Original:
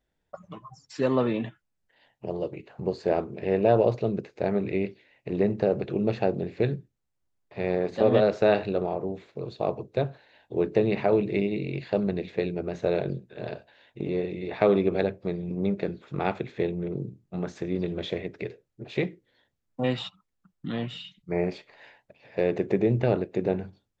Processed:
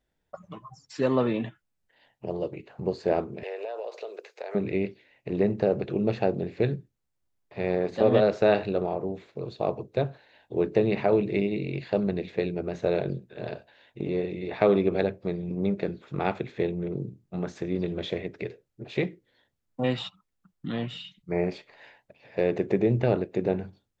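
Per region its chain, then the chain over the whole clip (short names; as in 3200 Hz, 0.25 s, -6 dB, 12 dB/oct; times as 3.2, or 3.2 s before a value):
3.43–4.55 steep high-pass 420 Hz + tilt +1.5 dB/oct + compressor 8:1, threshold -31 dBFS
whole clip: dry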